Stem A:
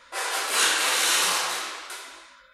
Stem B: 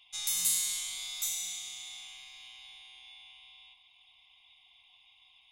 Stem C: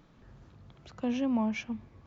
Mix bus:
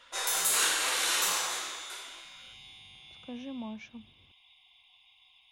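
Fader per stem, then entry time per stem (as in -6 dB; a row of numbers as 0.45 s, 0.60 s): -7.0 dB, 0.0 dB, -11.0 dB; 0.00 s, 0.00 s, 2.25 s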